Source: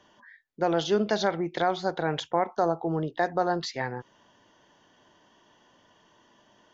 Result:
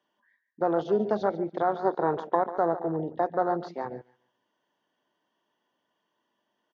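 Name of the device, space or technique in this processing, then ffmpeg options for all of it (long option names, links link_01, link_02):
over-cleaned archive recording: -filter_complex "[0:a]asettb=1/sr,asplit=3[link_01][link_02][link_03];[link_01]atrim=end=1.794[link_04];[link_02]atrim=start=1.79:end=2.35,asetpts=PTS-STARTPTS,afade=type=in:duration=0.004:curve=qsin,afade=type=out:start_time=0.556:duration=0.004:curve=qsin,equalizer=frequency=400:width_type=o:width=0.33:gain=8,equalizer=frequency=1000:width_type=o:width=0.33:gain=11,equalizer=frequency=3150:width_type=o:width=0.33:gain=-5[link_05];[link_03]atrim=start=2.346[link_06];[link_04][link_05]acrossfade=duration=0.004:curve1=hsin:curve2=qsin[link_07];[link_07][link_06]acrossfade=duration=0.004:curve1=qsin:curve2=hsin,highpass=190,lowpass=5100,asplit=2[link_08][link_09];[link_09]adelay=143,lowpass=frequency=5000:poles=1,volume=-12dB,asplit=2[link_10][link_11];[link_11]adelay=143,lowpass=frequency=5000:poles=1,volume=0.27,asplit=2[link_12][link_13];[link_13]adelay=143,lowpass=frequency=5000:poles=1,volume=0.27[link_14];[link_08][link_10][link_12][link_14]amix=inputs=4:normalize=0,afwtdn=0.0398"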